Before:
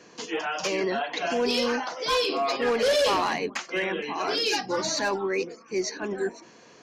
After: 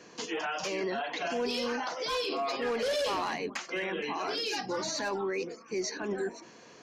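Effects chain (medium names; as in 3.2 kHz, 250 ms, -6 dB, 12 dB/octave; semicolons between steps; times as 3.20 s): peak limiter -24 dBFS, peak gain reduction 7.5 dB; trim -1 dB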